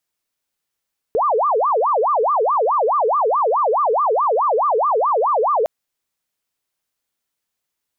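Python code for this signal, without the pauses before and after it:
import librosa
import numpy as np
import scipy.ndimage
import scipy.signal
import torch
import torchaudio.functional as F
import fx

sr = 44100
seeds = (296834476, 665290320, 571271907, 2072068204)

y = fx.siren(sr, length_s=4.51, kind='wail', low_hz=425.0, high_hz=1210.0, per_s=4.7, wave='sine', level_db=-14.0)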